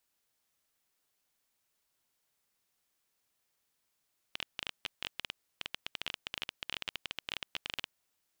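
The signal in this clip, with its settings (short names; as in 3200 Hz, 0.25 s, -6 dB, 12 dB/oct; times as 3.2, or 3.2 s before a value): random clicks 16/s -18 dBFS 3.53 s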